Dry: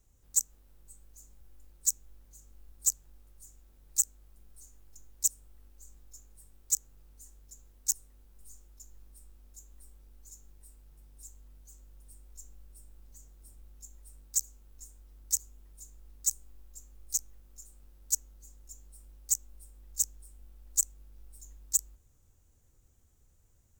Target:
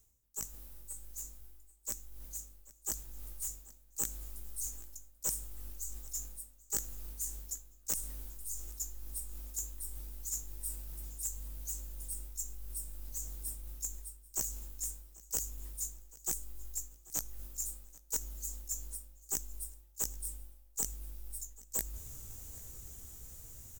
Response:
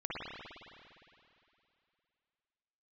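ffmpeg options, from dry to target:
-filter_complex "[0:a]asplit=2[link_01][link_02];[link_02]adelay=17,volume=-9dB[link_03];[link_01][link_03]amix=inputs=2:normalize=0,areverse,acompressor=threshold=-57dB:ratio=12,areverse,crystalizer=i=2:c=0,asplit=2[link_04][link_05];[1:a]atrim=start_sample=2205[link_06];[link_05][link_06]afir=irnorm=-1:irlink=0,volume=-23.5dB[link_07];[link_04][link_07]amix=inputs=2:normalize=0,aeval=exprs='clip(val(0),-1,0.00562)':channel_layout=same,aecho=1:1:787|1574:0.0794|0.0278,dynaudnorm=framelen=180:gausssize=31:maxgain=5.5dB,volume=10dB"

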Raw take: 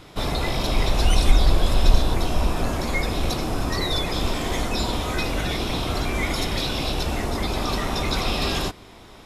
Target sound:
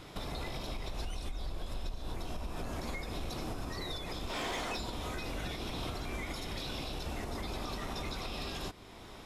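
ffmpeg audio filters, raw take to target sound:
ffmpeg -i in.wav -filter_complex "[0:a]asplit=3[link_01][link_02][link_03];[link_01]afade=type=out:start_time=4.29:duration=0.02[link_04];[link_02]asplit=2[link_05][link_06];[link_06]highpass=frequency=720:poles=1,volume=17dB,asoftclip=type=tanh:threshold=-12.5dB[link_07];[link_05][link_07]amix=inputs=2:normalize=0,lowpass=frequency=4300:poles=1,volume=-6dB,afade=type=in:start_time=4.29:duration=0.02,afade=type=out:start_time=4.76:duration=0.02[link_08];[link_03]afade=type=in:start_time=4.76:duration=0.02[link_09];[link_04][link_08][link_09]amix=inputs=3:normalize=0,acompressor=threshold=-24dB:ratio=6,alimiter=level_in=1dB:limit=-24dB:level=0:latency=1:release=402,volume=-1dB,volume=-4dB" out.wav

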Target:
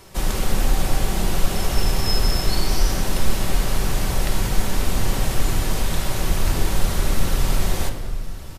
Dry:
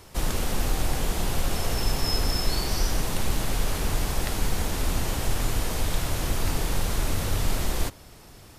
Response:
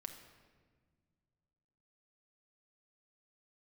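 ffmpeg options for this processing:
-filter_complex "[0:a]aecho=1:1:1064:0.126[link_01];[1:a]atrim=start_sample=2205[link_02];[link_01][link_02]afir=irnorm=-1:irlink=0,volume=7.5dB"

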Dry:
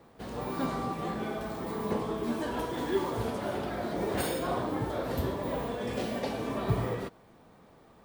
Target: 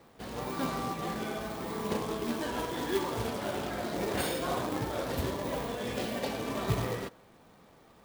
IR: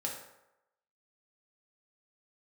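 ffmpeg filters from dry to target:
-filter_complex "[0:a]acrusher=bits=3:mode=log:mix=0:aa=0.000001,equalizer=frequency=3300:width=0.48:gain=4,asplit=2[link_01][link_02];[1:a]atrim=start_sample=2205[link_03];[link_02][link_03]afir=irnorm=-1:irlink=0,volume=-22dB[link_04];[link_01][link_04]amix=inputs=2:normalize=0,volume=-2.5dB"

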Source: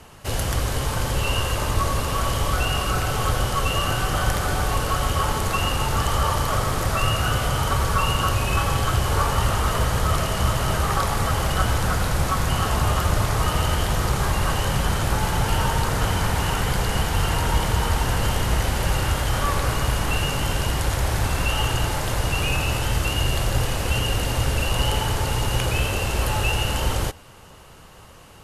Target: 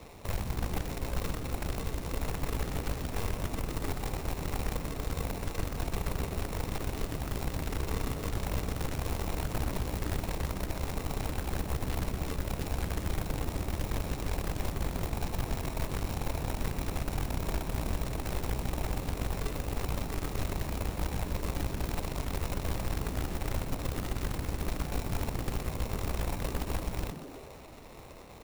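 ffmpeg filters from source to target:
ffmpeg -i in.wav -filter_complex "[0:a]equalizer=frequency=190:width=1.6:gain=-13.5,acrusher=samples=28:mix=1:aa=0.000001,acrossover=split=100|5900[link_01][link_02][link_03];[link_01]acompressor=threshold=-31dB:ratio=4[link_04];[link_02]acompressor=threshold=-42dB:ratio=4[link_05];[link_03]acompressor=threshold=-48dB:ratio=4[link_06];[link_04][link_05][link_06]amix=inputs=3:normalize=0,acrusher=bits=2:mode=log:mix=0:aa=0.000001,aeval=exprs='0.133*(cos(1*acos(clip(val(0)/0.133,-1,1)))-cos(1*PI/2))+0.0266*(cos(4*acos(clip(val(0)/0.133,-1,1)))-cos(4*PI/2))':channel_layout=same,asplit=8[link_07][link_08][link_09][link_10][link_11][link_12][link_13][link_14];[link_08]adelay=123,afreqshift=120,volume=-11dB[link_15];[link_09]adelay=246,afreqshift=240,volume=-15.3dB[link_16];[link_10]adelay=369,afreqshift=360,volume=-19.6dB[link_17];[link_11]adelay=492,afreqshift=480,volume=-23.9dB[link_18];[link_12]adelay=615,afreqshift=600,volume=-28.2dB[link_19];[link_13]adelay=738,afreqshift=720,volume=-32.5dB[link_20];[link_14]adelay=861,afreqshift=840,volume=-36.8dB[link_21];[link_07][link_15][link_16][link_17][link_18][link_19][link_20][link_21]amix=inputs=8:normalize=0,volume=-2.5dB" out.wav

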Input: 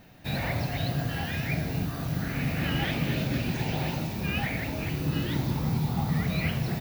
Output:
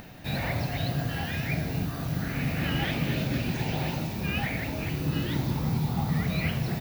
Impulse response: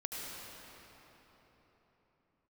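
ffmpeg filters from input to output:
-af "acompressor=mode=upward:threshold=-38dB:ratio=2.5"

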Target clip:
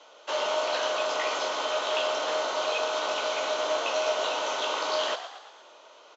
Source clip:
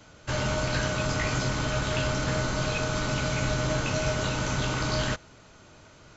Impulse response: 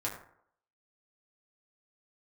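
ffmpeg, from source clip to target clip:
-filter_complex "[0:a]highpass=frequency=450:width=0.5412,highpass=frequency=450:width=1.3066,equalizer=frequency=550:width_type=q:width=4:gain=3,equalizer=frequency=990:width_type=q:width=4:gain=4,equalizer=frequency=1600:width_type=q:width=4:gain=-8,equalizer=frequency=2200:width_type=q:width=4:gain=-5,equalizer=frequency=3200:width_type=q:width=4:gain=4,equalizer=frequency=4800:width_type=q:width=4:gain=-5,lowpass=frequency=5800:width=0.5412,lowpass=frequency=5800:width=1.3066,asplit=7[link_01][link_02][link_03][link_04][link_05][link_06][link_07];[link_02]adelay=115,afreqshift=62,volume=-11.5dB[link_08];[link_03]adelay=230,afreqshift=124,volume=-17.2dB[link_09];[link_04]adelay=345,afreqshift=186,volume=-22.9dB[link_10];[link_05]adelay=460,afreqshift=248,volume=-28.5dB[link_11];[link_06]adelay=575,afreqshift=310,volume=-34.2dB[link_12];[link_07]adelay=690,afreqshift=372,volume=-39.9dB[link_13];[link_01][link_08][link_09][link_10][link_11][link_12][link_13]amix=inputs=7:normalize=0,volume=2.5dB"

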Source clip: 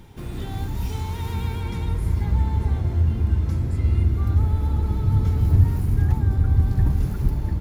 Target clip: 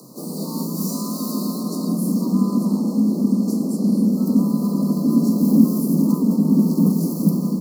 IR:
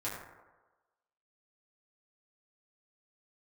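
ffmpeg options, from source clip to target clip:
-filter_complex "[0:a]afreqshift=130,asplit=3[link_01][link_02][link_03];[link_02]asetrate=52444,aresample=44100,atempo=0.840896,volume=-6dB[link_04];[link_03]asetrate=55563,aresample=44100,atempo=0.793701,volume=-8dB[link_05];[link_01][link_04][link_05]amix=inputs=3:normalize=0,asuperstop=centerf=2300:order=20:qfactor=0.77,aexciter=amount=2.3:drive=8.2:freq=2800"

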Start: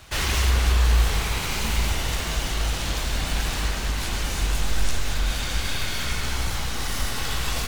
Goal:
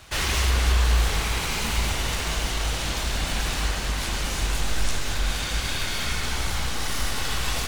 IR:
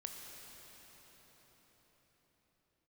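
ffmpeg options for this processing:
-filter_complex "[0:a]asplit=2[link_01][link_02];[link_02]lowshelf=frequency=160:gain=-9[link_03];[1:a]atrim=start_sample=2205,asetrate=22932,aresample=44100[link_04];[link_03][link_04]afir=irnorm=-1:irlink=0,volume=-4dB[link_05];[link_01][link_05]amix=inputs=2:normalize=0,volume=-3.5dB"

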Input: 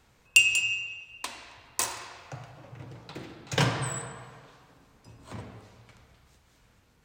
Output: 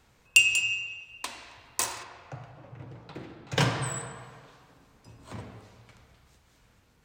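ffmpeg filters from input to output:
ffmpeg -i in.wav -filter_complex "[0:a]asettb=1/sr,asplit=3[link_01][link_02][link_03];[link_01]atrim=end=2.034[link_04];[link_02]atrim=start=2.03:end=3.57,asetpts=PTS-STARTPTS,afade=type=in:duration=0.004:curve=qsin,afade=type=out:start_time=1.536:duration=0.004:curve=qsin,highshelf=frequency=3700:gain=-11.5[link_05];[link_03]atrim=start=3.566[link_06];[link_04][link_05]acrossfade=duration=0.004:curve1=hsin:curve2=qsin[link_07];[link_07][link_06]acrossfade=duration=0.004:curve1=qsin:curve2=hsin" out.wav

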